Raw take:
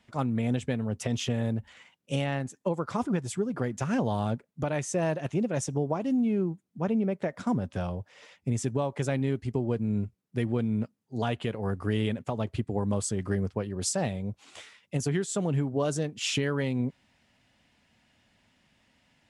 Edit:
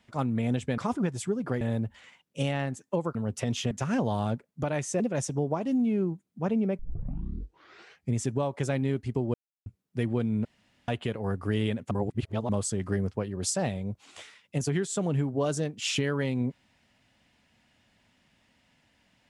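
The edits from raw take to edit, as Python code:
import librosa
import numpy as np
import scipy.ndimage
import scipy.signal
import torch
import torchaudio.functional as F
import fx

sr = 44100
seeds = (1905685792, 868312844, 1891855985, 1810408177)

y = fx.edit(x, sr, fx.swap(start_s=0.78, length_s=0.56, other_s=2.88, other_length_s=0.83),
    fx.cut(start_s=5.0, length_s=0.39),
    fx.tape_start(start_s=7.18, length_s=1.35),
    fx.silence(start_s=9.73, length_s=0.32),
    fx.room_tone_fill(start_s=10.84, length_s=0.43),
    fx.reverse_span(start_s=12.3, length_s=0.58), tone=tone)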